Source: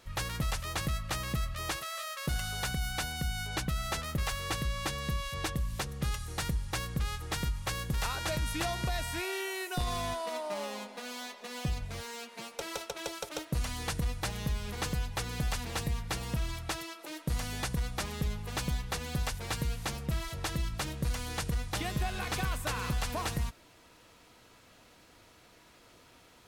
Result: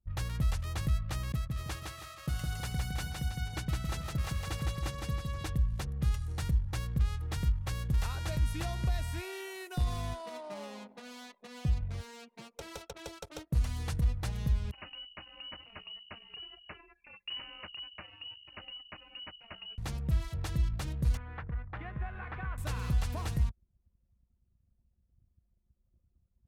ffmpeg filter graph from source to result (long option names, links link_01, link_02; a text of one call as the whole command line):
ffmpeg -i in.wav -filter_complex "[0:a]asettb=1/sr,asplit=3[link_01][link_02][link_03];[link_01]atrim=end=1.324[link_04];[link_02]atrim=start=1.32:end=5.45,asetpts=PTS-STARTPTS,afade=type=in:duration=0.004:curve=qsin,afade=type=out:start_time=4.126:duration=0.004:curve=qsin,highpass=frequency=100:poles=1,agate=range=-33dB:threshold=-36dB:ratio=3:release=100:detection=peak,aecho=1:1:161|322|483|644|805:0.708|0.283|0.113|0.0453|0.0181,atrim=end_sample=182133[link_05];[link_03]atrim=start=5.446[link_06];[link_04][link_05]acrossfade=duration=0.004:curve1=hsin:curve2=qsin[link_07];[link_07][link_06]acrossfade=duration=0.004:curve1=qsin:curve2=hsin,asettb=1/sr,asplit=3[link_08][link_09][link_10];[link_08]atrim=end=14.714[link_11];[link_09]atrim=start=14.71:end=19.78,asetpts=PTS-STARTPTS,afade=type=in:duration=0.004:curve=qsin,afade=type=out:start_time=5.066:duration=0.004:curve=qsin,lowpass=frequency=2600:width_type=q:width=0.5098,lowpass=frequency=2600:width_type=q:width=0.6013,lowpass=frequency=2600:width_type=q:width=0.9,lowpass=frequency=2600:width_type=q:width=2.563,afreqshift=-3000,adynamicequalizer=threshold=0.00398:dfrequency=1500:dqfactor=0.7:tfrequency=1500:tqfactor=0.7:attack=5:release=100:ratio=0.375:range=4:mode=cutabove:tftype=highshelf[link_12];[link_10]atrim=start=19.776[link_13];[link_11][link_12]acrossfade=duration=0.004:curve1=hsin:curve2=qsin[link_14];[link_14][link_13]acrossfade=duration=0.004:curve1=qsin:curve2=hsin,asettb=1/sr,asplit=3[link_15][link_16][link_17];[link_15]atrim=end=21.174[link_18];[link_16]atrim=start=21.17:end=22.58,asetpts=PTS-STARTPTS,afade=type=in:duration=0.004:curve=qsin,afade=type=out:start_time=1.406:duration=0.004:curve=qsin,lowpass=frequency=1800:width=0.5412,lowpass=frequency=1800:width=1.3066,tiltshelf=frequency=880:gain=-8.5[link_19];[link_17]atrim=start=22.576[link_20];[link_18][link_19]acrossfade=duration=0.004:curve1=hsin:curve2=qsin[link_21];[link_21][link_20]acrossfade=duration=0.004:curve1=qsin:curve2=hsin,equalizer=frequency=74:width=0.49:gain=13.5,anlmdn=0.1,volume=-7.5dB" out.wav